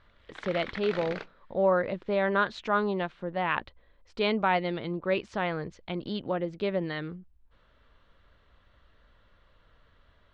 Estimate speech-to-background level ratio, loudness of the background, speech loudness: 10.5 dB, −40.5 LKFS, −30.0 LKFS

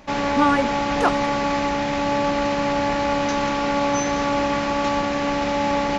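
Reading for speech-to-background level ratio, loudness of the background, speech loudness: −0.5 dB, −22.0 LKFS, −22.5 LKFS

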